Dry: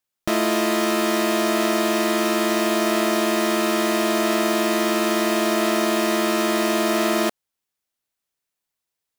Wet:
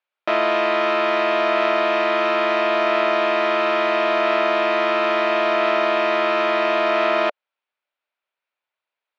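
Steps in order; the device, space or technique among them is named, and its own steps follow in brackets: phone earpiece (cabinet simulation 450–3700 Hz, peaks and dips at 590 Hz +7 dB, 940 Hz +5 dB, 1.4 kHz +6 dB, 2.4 kHz +6 dB)

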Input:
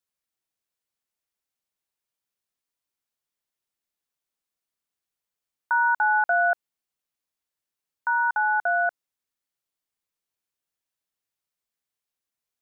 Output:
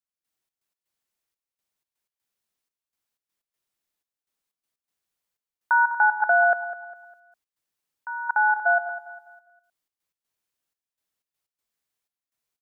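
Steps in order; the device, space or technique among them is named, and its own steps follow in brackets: trance gate with a delay (trance gate "..xx.x.xxxx" 123 bpm -12 dB; feedback delay 202 ms, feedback 37%, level -13.5 dB); trim +3 dB

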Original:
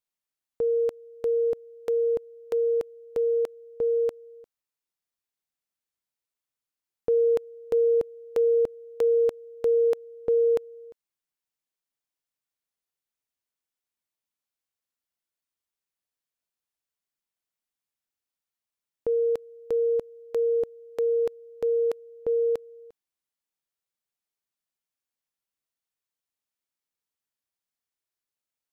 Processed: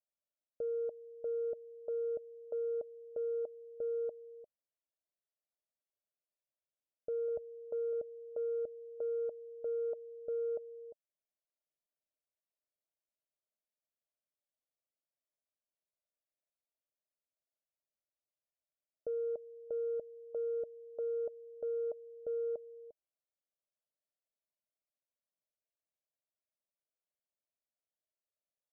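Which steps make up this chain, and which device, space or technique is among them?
7.28–7.93 s: high-pass 56 Hz 24 dB/octave; overdriven synthesiser ladder filter (saturation -29.5 dBFS, distortion -10 dB; four-pole ladder low-pass 660 Hz, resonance 75%); trim +1 dB

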